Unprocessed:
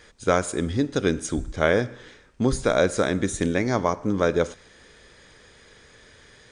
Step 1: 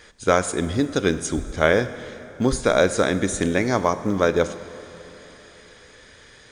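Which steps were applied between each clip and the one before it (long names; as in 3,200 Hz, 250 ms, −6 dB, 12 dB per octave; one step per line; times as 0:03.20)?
dense smooth reverb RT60 3.8 s, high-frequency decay 0.75×, DRR 14 dB
floating-point word with a short mantissa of 6 bits
low-shelf EQ 430 Hz −3 dB
level +3.5 dB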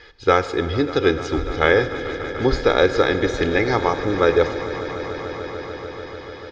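Chebyshev low-pass filter 5,000 Hz, order 4
comb filter 2.4 ms, depth 67%
echo that builds up and dies away 147 ms, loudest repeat 5, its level −17 dB
level +1.5 dB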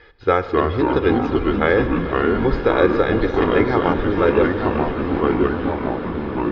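high-shelf EQ 6,100 Hz −11.5 dB
delay with pitch and tempo change per echo 208 ms, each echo −3 semitones, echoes 3
high-frequency loss of the air 190 metres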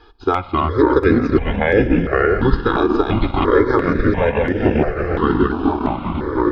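transient designer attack +3 dB, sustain −6 dB
brickwall limiter −6.5 dBFS, peak gain reduction 6.5 dB
step-sequenced phaser 2.9 Hz 530–4,100 Hz
level +6 dB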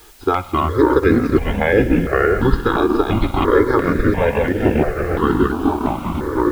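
bit-depth reduction 8 bits, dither triangular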